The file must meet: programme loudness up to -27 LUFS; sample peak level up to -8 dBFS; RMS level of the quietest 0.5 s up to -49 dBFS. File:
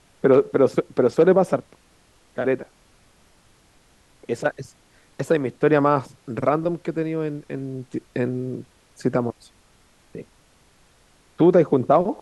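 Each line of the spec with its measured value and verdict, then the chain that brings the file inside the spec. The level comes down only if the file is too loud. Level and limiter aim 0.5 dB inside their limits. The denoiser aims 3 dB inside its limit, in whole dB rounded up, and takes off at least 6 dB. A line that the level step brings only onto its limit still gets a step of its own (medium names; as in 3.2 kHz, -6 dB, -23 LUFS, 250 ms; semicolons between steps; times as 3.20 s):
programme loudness -21.5 LUFS: fail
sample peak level -5.5 dBFS: fail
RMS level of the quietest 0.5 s -57 dBFS: pass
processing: trim -6 dB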